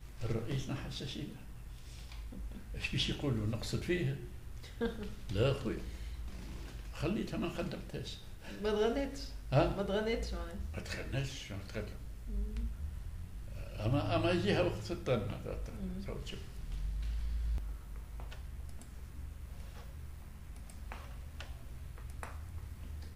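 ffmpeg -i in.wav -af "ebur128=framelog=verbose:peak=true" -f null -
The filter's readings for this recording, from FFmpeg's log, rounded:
Integrated loudness:
  I:         -38.7 LUFS
  Threshold: -49.2 LUFS
Loudness range:
  LRA:        12.6 LU
  Threshold: -58.9 LUFS
  LRA low:   -48.7 LUFS
  LRA high:  -36.0 LUFS
True peak:
  Peak:      -17.0 dBFS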